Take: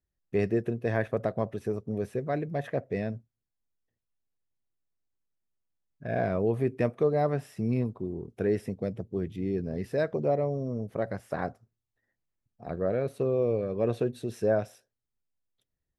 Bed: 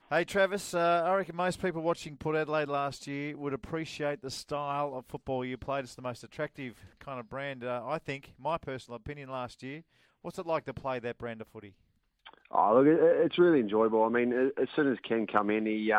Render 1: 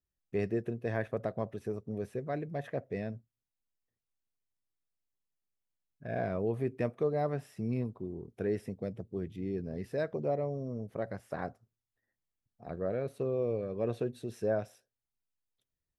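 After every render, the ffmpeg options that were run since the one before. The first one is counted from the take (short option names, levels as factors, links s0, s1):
-af "volume=0.531"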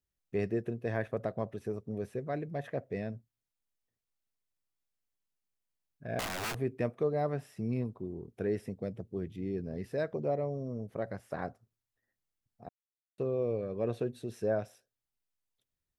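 -filter_complex "[0:a]asettb=1/sr,asplit=3[s0][s1][s2];[s0]atrim=end=6.194[s3];[s1]atrim=start=6.19:end=6.59,asetpts=PTS-STARTPTS,afade=t=in:d=0.004:c=qsin,afade=t=out:st=0.396:d=0.004:c=qsin,aeval=exprs='(mod(35.5*val(0)+1,2)-1)/35.5':c=same[s4];[s2]atrim=start=6.586[s5];[s3][s4]acrossfade=d=0.004:c1=hsin:c2=qsin[s6];[s6][s5]acrossfade=d=0.004:c1=qsin:c2=hsin,asplit=3[s7][s8][s9];[s7]atrim=end=12.69,asetpts=PTS-STARTPTS,afade=t=out:st=12.686:d=0.004:c=hsin[s10];[s8]atrim=start=12.69:end=13.18,asetpts=PTS-STARTPTS,volume=0[s11];[s9]atrim=start=13.18,asetpts=PTS-STARTPTS,afade=t=in:d=0.004:c=hsin[s12];[s10][s11][s12]concat=n=3:v=0:a=1"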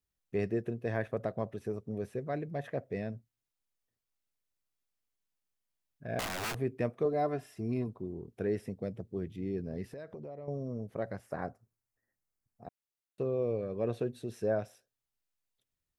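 -filter_complex "[0:a]asettb=1/sr,asplit=3[s0][s1][s2];[s0]atrim=end=7.054[s3];[s1]atrim=start=7.05:end=7.88,asetpts=PTS-STARTPTS,afade=t=in:d=0.004:c=qsin,afade=t=out:st=0.826:d=0.004:c=qsin,aecho=1:1:2.9:0.6,atrim=end_sample=36603[s4];[s2]atrim=start=7.876[s5];[s3][s4]acrossfade=d=0.004:c1=hsin:c2=qsin[s6];[s6][s5]acrossfade=d=0.004:c1=qsin:c2=hsin,asettb=1/sr,asplit=3[s7][s8][s9];[s7]atrim=end=9.924[s10];[s8]atrim=start=9.92:end=10.48,asetpts=PTS-STARTPTS,afade=t=in:d=0.004:c=qsin,afade=t=out:st=0.556:d=0.004:c=qsin,acompressor=threshold=0.00891:ratio=8:attack=3.2:release=140:knee=1:detection=peak[s11];[s9]atrim=start=10.476[s12];[s10][s11]acrossfade=d=0.004:c1=hsin:c2=qsin[s13];[s13][s12]acrossfade=d=0.004:c1=qsin:c2=hsin,asettb=1/sr,asplit=3[s14][s15][s16];[s14]atrim=end=11.264[s17];[s15]atrim=start=11.26:end=12.65,asetpts=PTS-STARTPTS,afade=t=in:d=0.004:c=qsin,afade=t=out:st=1.386:d=0.004:c=qsin,equalizer=f=3400:t=o:w=0.77:g=-10[s18];[s16]atrim=start=12.646[s19];[s17][s18]acrossfade=d=0.004:c1=hsin:c2=qsin[s20];[s20][s19]acrossfade=d=0.004:c1=qsin:c2=hsin"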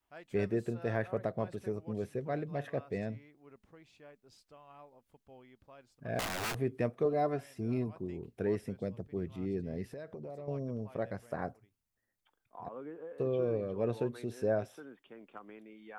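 -filter_complex "[1:a]volume=0.075[s0];[0:a][s0]amix=inputs=2:normalize=0"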